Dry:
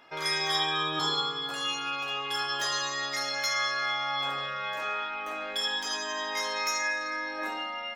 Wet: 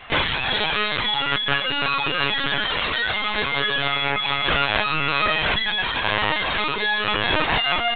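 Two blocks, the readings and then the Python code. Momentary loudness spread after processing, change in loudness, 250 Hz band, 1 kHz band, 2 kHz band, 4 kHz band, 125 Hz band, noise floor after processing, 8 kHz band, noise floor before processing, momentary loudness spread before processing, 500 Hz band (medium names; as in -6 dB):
2 LU, +8.5 dB, +11.5 dB, +8.0 dB, +10.5 dB, +8.0 dB, +16.0 dB, -25 dBFS, under -40 dB, -36 dBFS, 6 LU, +9.5 dB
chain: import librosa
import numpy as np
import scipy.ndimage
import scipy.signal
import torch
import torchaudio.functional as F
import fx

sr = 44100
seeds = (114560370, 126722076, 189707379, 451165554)

p1 = fx.tilt_shelf(x, sr, db=-3.0, hz=1200.0)
p2 = fx.hum_notches(p1, sr, base_hz=50, count=9)
p3 = fx.echo_thinned(p2, sr, ms=80, feedback_pct=29, hz=160.0, wet_db=-7.5)
p4 = fx.over_compress(p3, sr, threshold_db=-34.0, ratio=-0.5)
p5 = p3 + F.gain(torch.from_numpy(p4), 3.0).numpy()
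p6 = fx.dereverb_blind(p5, sr, rt60_s=1.3)
p7 = fx.cheby_harmonics(p6, sr, harmonics=(3, 4, 8), levels_db=(-42, -16, -9), full_scale_db=-13.0)
p8 = fx.lpc_vocoder(p7, sr, seeds[0], excitation='pitch_kept', order=16)
y = F.gain(torch.from_numpy(p8), 2.5).numpy()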